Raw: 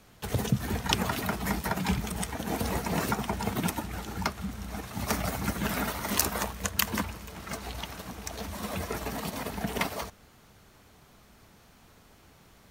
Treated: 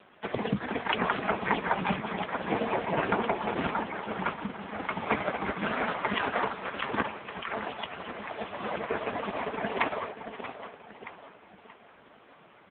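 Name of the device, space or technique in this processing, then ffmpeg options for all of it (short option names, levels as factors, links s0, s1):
satellite phone: -af "highpass=340,lowpass=3100,equalizer=f=150:w=1.7:g=4,aecho=1:1:525:0.075,aecho=1:1:629|1258|1887|2516:0.335|0.127|0.0484|0.0184,volume=2.82" -ar 8000 -c:a libopencore_amrnb -b:a 4750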